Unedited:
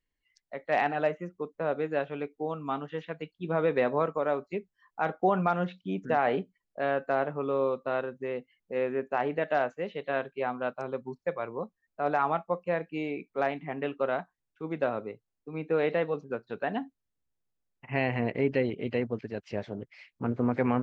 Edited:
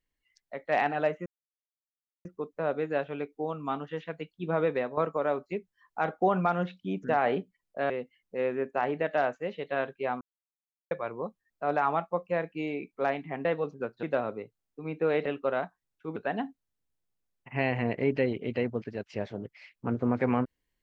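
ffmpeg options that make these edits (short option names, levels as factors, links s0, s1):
-filter_complex "[0:a]asplit=10[s0][s1][s2][s3][s4][s5][s6][s7][s8][s9];[s0]atrim=end=1.26,asetpts=PTS-STARTPTS,afade=t=out:st=1.256:d=0.004:c=hsin,apad=pad_dur=0.99[s10];[s1]atrim=start=1.26:end=3.98,asetpts=PTS-STARTPTS,afade=t=in:d=0.004:c=hsin,afade=t=out:st=2.37:d=0.35:silence=0.251189[s11];[s2]atrim=start=3.98:end=6.912,asetpts=PTS-STARTPTS,afade=t=in:d=0.004:c=hsin:silence=0.251189[s12];[s3]atrim=start=8.268:end=10.58,asetpts=PTS-STARTPTS,afade=t=out:st=2.308:d=0.004:c=hsin[s13];[s4]atrim=start=10.58:end=11.28,asetpts=PTS-STARTPTS,volume=0[s14];[s5]atrim=start=11.28:end=13.822,asetpts=PTS-STARTPTS,afade=t=in:d=0.004:c=hsin[s15];[s6]atrim=start=15.948:end=16.532[s16];[s7]atrim=start=14.718:end=15.952[s17];[s8]atrim=start=13.818:end=14.722[s18];[s9]atrim=start=16.528[s19];[s10][s11][s12]concat=n=3:v=0:a=1[s20];[s13][s14][s15]concat=n=3:v=0:a=1[s21];[s20][s21]acrossfade=d=0.004:c1=hsin:c2=hsin[s22];[s22][s16]acrossfade=d=0.004:c1=hsin:c2=hsin[s23];[s23][s17]acrossfade=d=0.004:c1=hsin:c2=hsin[s24];[s24][s18]acrossfade=d=0.004:c1=hsin:c2=hsin[s25];[s25][s19]acrossfade=d=0.004:c1=hsin:c2=hsin"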